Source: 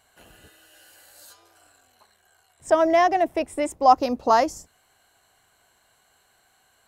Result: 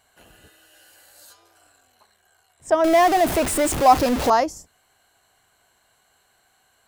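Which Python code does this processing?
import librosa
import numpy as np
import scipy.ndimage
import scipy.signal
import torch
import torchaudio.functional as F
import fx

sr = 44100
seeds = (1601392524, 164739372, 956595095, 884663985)

y = fx.zero_step(x, sr, step_db=-19.5, at=(2.84, 4.3))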